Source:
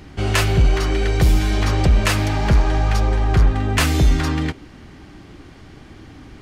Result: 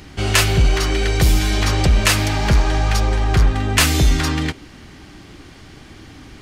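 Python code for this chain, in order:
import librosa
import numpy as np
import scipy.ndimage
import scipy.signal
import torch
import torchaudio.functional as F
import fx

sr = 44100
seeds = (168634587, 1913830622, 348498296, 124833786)

y = fx.high_shelf(x, sr, hz=2200.0, db=8.0)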